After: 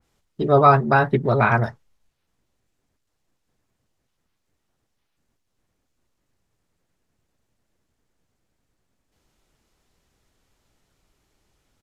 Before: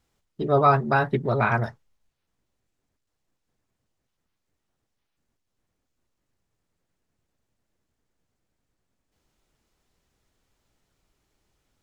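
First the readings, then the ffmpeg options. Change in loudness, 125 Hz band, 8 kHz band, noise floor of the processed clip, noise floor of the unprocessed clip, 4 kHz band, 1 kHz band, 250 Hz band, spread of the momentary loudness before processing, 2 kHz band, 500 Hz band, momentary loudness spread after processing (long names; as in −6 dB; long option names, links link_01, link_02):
+4.0 dB, +4.5 dB, can't be measured, −75 dBFS, −80 dBFS, +3.0 dB, +4.5 dB, +4.5 dB, 11 LU, +4.0 dB, +4.5 dB, 11 LU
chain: -af "aresample=32000,aresample=44100,adynamicequalizer=threshold=0.0158:dfrequency=2400:dqfactor=0.7:tfrequency=2400:tqfactor=0.7:attack=5:release=100:ratio=0.375:range=2:mode=cutabove:tftype=highshelf,volume=4.5dB"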